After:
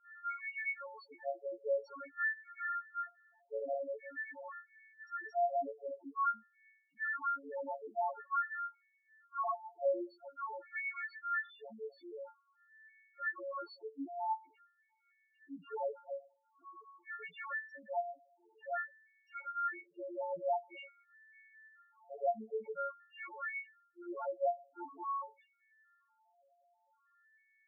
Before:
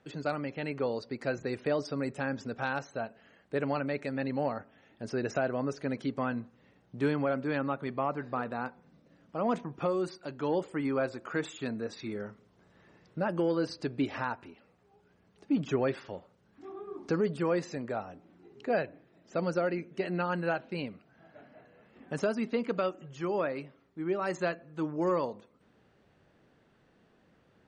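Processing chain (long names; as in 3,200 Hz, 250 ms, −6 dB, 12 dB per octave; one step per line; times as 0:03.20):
every partial snapped to a pitch grid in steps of 4 semitones
LFO wah 0.48 Hz 670–2,200 Hz, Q 2.6
spectral peaks only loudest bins 2
level +4 dB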